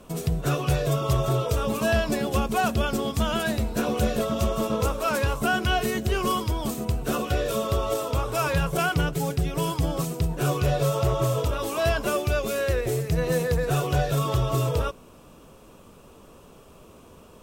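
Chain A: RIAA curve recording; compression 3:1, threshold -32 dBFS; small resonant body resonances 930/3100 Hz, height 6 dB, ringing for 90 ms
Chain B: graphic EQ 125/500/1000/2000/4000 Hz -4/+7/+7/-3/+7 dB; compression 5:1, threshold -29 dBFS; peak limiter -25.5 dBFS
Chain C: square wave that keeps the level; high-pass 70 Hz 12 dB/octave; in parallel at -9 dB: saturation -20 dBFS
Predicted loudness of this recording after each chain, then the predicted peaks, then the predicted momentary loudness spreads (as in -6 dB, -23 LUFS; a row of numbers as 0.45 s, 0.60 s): -31.5 LUFS, -34.0 LUFS, -19.5 LUFS; -15.0 dBFS, -25.5 dBFS, -6.5 dBFS; 15 LU, 12 LU, 3 LU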